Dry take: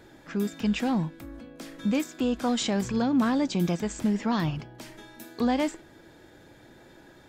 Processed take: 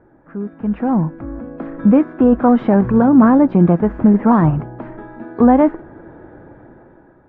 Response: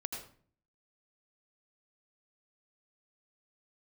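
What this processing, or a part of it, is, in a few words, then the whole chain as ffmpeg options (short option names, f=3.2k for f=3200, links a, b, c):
action camera in a waterproof case: -af "lowpass=f=1.4k:w=0.5412,lowpass=f=1.4k:w=1.3066,dynaudnorm=f=220:g=9:m=15dB,volume=1.5dB" -ar 44100 -c:a aac -b:a 48k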